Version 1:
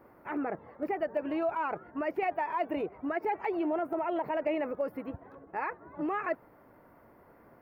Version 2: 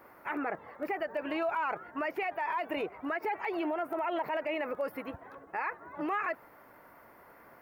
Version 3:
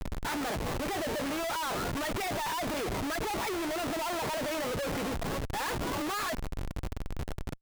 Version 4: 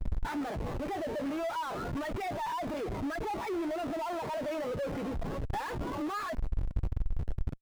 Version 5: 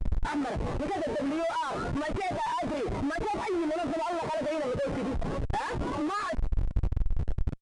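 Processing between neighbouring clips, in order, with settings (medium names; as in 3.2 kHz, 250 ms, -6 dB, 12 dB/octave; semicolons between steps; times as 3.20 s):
tilt shelf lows -7.5 dB, about 720 Hz; peak limiter -27 dBFS, peak gain reduction 9 dB; trim +2.5 dB
companded quantiser 8-bit; Schmitt trigger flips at -47.5 dBFS; trim +3 dB
transient shaper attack +8 dB, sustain +3 dB; spectral contrast expander 1.5:1; trim +2 dB
resampled via 22.05 kHz; trim +4 dB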